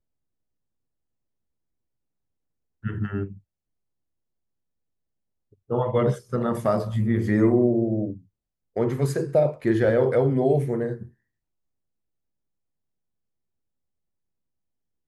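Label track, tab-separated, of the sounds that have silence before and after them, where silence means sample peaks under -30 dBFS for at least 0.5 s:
2.850000	3.250000	sound
5.710000	8.130000	sound
8.770000	11.030000	sound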